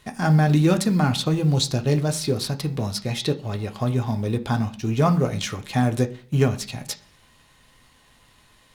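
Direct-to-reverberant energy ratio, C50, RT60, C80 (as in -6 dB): 4.5 dB, 16.0 dB, 0.40 s, 20.5 dB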